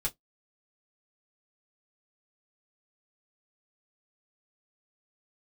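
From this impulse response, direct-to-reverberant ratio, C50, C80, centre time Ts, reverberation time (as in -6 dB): -3.0 dB, 28.0 dB, 42.0 dB, 8 ms, 0.10 s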